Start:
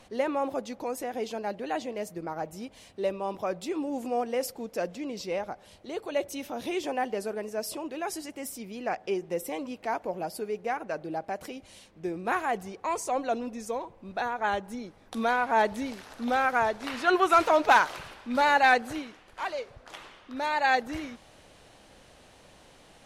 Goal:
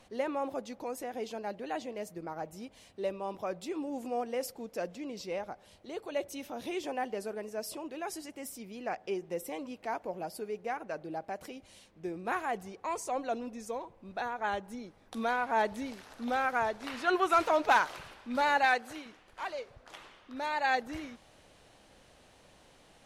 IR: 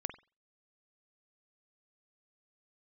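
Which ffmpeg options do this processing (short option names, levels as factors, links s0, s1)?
-filter_complex "[0:a]asettb=1/sr,asplit=3[s0][s1][s2];[s0]atrim=end=18.654[s3];[s1]atrim=start=18.65:end=19.06,asetpts=PTS-STARTPTS,afade=t=in:d=0.004:c=qsin,afade=t=out:st=0.406:d=0.004:c=qsin,lowshelf=f=340:g=-9.5[s4];[s2]atrim=start=19.056[s5];[s3][s4]acrossfade=d=0.004:c1=hsin:c2=qsin[s6];[s6][s5]acrossfade=d=0.004:c1=qsin:c2=hsin,volume=0.562"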